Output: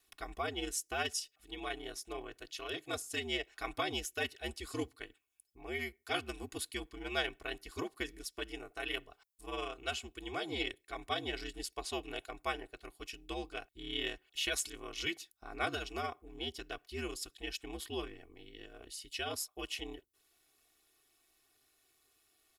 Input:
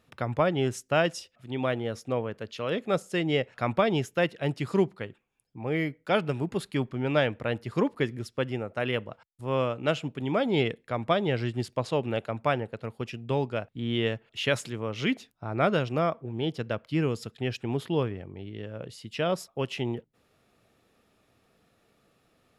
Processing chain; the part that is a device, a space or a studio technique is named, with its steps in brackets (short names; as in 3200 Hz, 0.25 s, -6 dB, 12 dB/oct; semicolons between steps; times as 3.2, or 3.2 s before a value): pre-emphasis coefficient 0.9; ring-modulated robot voice (ring modulator 76 Hz; comb 2.7 ms, depth 85%); gain +5 dB